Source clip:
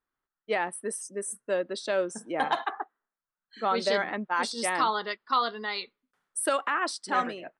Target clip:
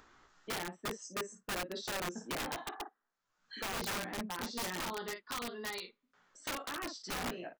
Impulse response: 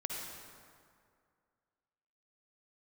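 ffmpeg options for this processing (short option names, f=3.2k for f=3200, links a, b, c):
-filter_complex "[0:a]asplit=2[a][b];[b]aecho=0:1:17|54:0.668|0.335[c];[a][c]amix=inputs=2:normalize=0,acompressor=mode=upward:threshold=-38dB:ratio=2.5,aresample=16000,aresample=44100,acrossover=split=360[d][e];[e]acompressor=threshold=-36dB:ratio=6[f];[d][f]amix=inputs=2:normalize=0,aeval=exprs='(mod(28.2*val(0)+1,2)-1)/28.2':c=same,volume=-3dB"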